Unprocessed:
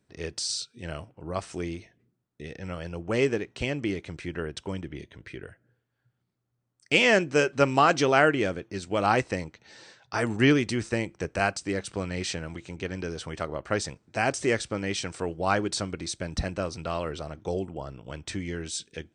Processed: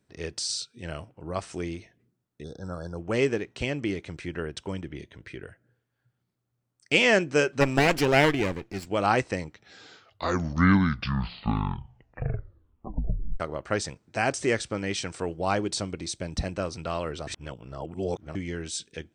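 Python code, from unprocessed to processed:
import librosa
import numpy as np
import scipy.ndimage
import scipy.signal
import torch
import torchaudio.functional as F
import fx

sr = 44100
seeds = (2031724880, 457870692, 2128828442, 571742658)

y = fx.spec_erase(x, sr, start_s=2.43, length_s=0.55, low_hz=1700.0, high_hz=3400.0)
y = fx.lower_of_two(y, sr, delay_ms=0.41, at=(7.6, 8.85), fade=0.02)
y = fx.peak_eq(y, sr, hz=1500.0, db=-5.0, octaves=0.77, at=(15.46, 16.56))
y = fx.edit(y, sr, fx.tape_stop(start_s=9.38, length_s=4.02),
    fx.reverse_span(start_s=17.27, length_s=1.08), tone=tone)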